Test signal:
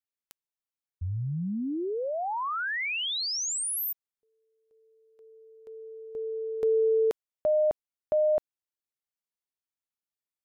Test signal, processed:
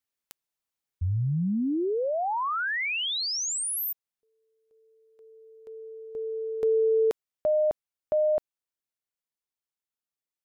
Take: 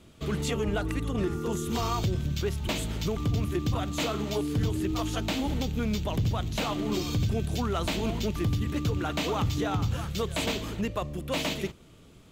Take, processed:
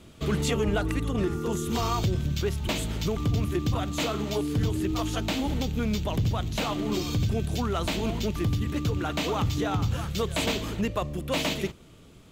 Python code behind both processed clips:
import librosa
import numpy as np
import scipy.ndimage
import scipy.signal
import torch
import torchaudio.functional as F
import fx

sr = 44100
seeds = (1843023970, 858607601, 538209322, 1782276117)

y = fx.rider(x, sr, range_db=10, speed_s=2.0)
y = F.gain(torch.from_numpy(y), 1.5).numpy()